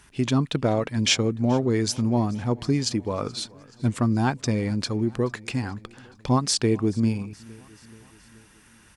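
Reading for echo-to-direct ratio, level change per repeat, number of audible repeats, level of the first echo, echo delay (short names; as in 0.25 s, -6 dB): -22.0 dB, -4.5 dB, 3, -24.0 dB, 0.428 s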